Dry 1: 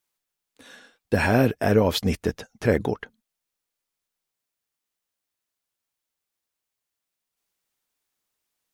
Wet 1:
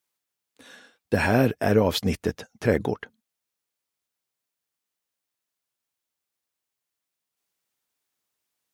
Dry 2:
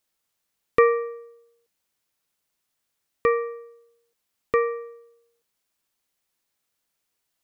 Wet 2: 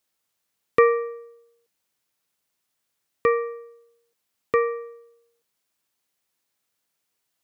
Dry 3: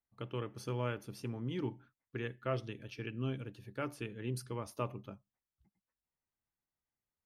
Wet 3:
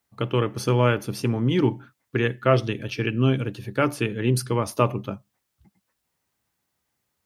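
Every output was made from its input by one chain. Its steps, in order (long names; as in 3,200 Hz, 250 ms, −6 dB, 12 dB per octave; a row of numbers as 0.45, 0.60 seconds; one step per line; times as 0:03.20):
high-pass filter 69 Hz
loudness normalisation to −24 LKFS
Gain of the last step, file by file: −1.0, +0.5, +17.0 decibels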